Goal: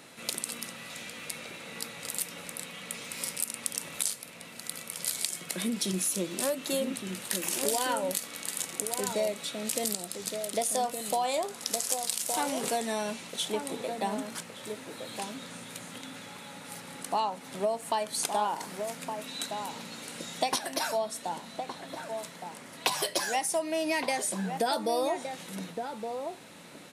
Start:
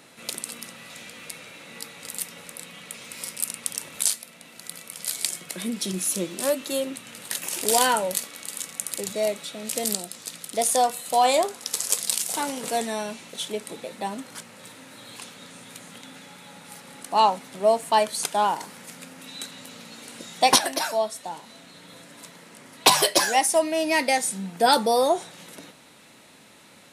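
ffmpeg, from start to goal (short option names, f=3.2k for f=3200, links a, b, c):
-filter_complex "[0:a]acompressor=threshold=-26dB:ratio=8,asplit=2[a][b];[b]adelay=1166,volume=-6dB,highshelf=f=4k:g=-26.2[c];[a][c]amix=inputs=2:normalize=0"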